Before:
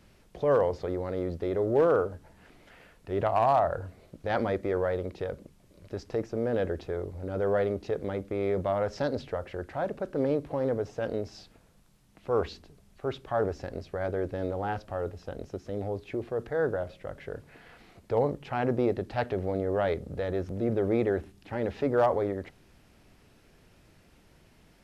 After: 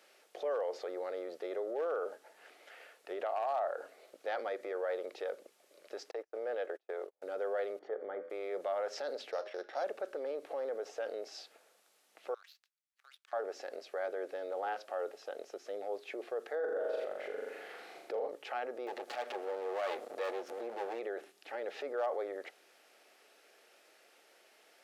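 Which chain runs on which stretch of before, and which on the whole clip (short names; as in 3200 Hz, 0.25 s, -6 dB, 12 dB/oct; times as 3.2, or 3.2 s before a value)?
6.11–7.22 tone controls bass -13 dB, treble -5 dB + compressor, threshold -32 dBFS + gate -41 dBFS, range -38 dB
7.79–8.3 polynomial smoothing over 41 samples + de-hum 83.84 Hz, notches 33
9.31–9.84 sample sorter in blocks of 8 samples + LPF 2600 Hz + de-hum 206.8 Hz, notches 39
12.34–13.33 HPF 1400 Hz 24 dB/oct + compressor 3:1, threshold -51 dBFS + power-law curve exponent 2
16.55–18.28 low shelf 480 Hz +10 dB + flutter echo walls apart 7 m, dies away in 0.83 s
18.87–21.01 minimum comb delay 8.3 ms + upward compressor, threshold -29 dBFS
whole clip: limiter -27 dBFS; HPF 450 Hz 24 dB/oct; notch 990 Hz, Q 6.6; gain +1 dB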